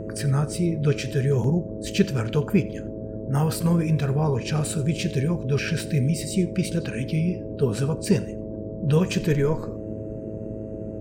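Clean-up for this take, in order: de-hum 107.7 Hz, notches 6; interpolate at 1.44 s, 2.7 ms; noise print and reduce 30 dB; inverse comb 88 ms -21.5 dB

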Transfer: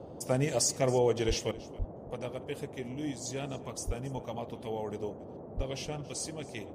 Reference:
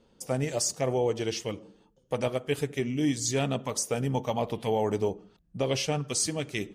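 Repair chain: de-plosive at 1.27/1.78/3.86/5.56 s; noise print and reduce 16 dB; inverse comb 276 ms -20 dB; trim 0 dB, from 1.51 s +10 dB

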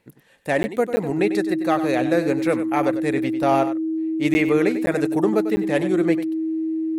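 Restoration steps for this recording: band-stop 320 Hz, Q 30; interpolate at 0.63/0.96/4.34/4.86/5.56 s, 10 ms; inverse comb 96 ms -11.5 dB

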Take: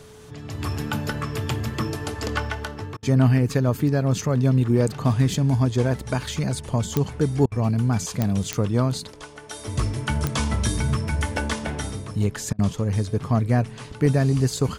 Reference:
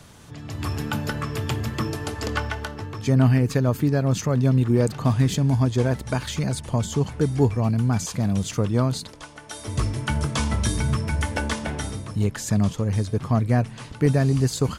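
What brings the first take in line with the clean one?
de-click; band-stop 430 Hz, Q 30; interpolate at 2.97/7.46/12.53 s, 56 ms

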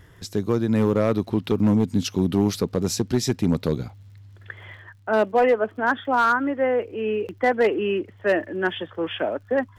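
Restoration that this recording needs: clip repair -12 dBFS; de-click

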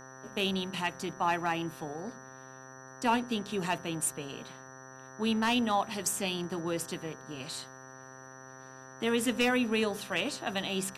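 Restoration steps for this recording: clip repair -18.5 dBFS; de-hum 131.5 Hz, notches 14; band-stop 5.9 kHz, Q 30

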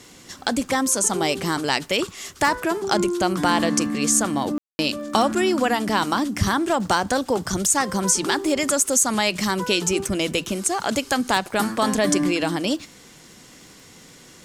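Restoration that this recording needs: de-click; room tone fill 4.58–4.79 s

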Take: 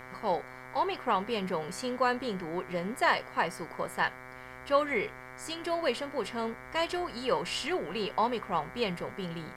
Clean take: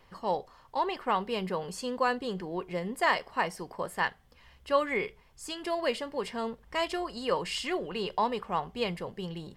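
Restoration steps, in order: de-hum 127.7 Hz, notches 18; expander -38 dBFS, range -21 dB

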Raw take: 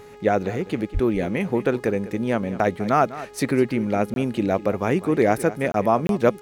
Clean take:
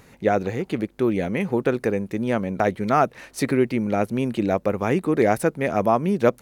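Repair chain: de-hum 416.1 Hz, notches 20; 0.93–1.05 s: high-pass 140 Hz 24 dB/octave; interpolate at 4.14/5.72/6.07 s, 22 ms; inverse comb 200 ms -16 dB

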